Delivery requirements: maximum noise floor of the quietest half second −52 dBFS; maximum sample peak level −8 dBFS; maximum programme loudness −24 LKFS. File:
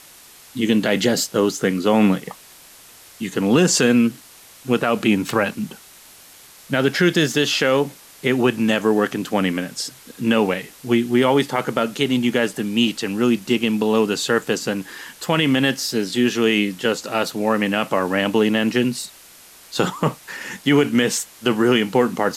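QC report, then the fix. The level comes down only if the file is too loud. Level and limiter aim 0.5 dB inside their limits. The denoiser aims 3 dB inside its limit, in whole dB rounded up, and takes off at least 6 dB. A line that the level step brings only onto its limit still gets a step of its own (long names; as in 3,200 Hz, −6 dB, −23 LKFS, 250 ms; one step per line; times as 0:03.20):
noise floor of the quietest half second −46 dBFS: out of spec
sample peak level −5.5 dBFS: out of spec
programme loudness −19.5 LKFS: out of spec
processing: broadband denoise 6 dB, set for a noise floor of −46 dBFS
level −5 dB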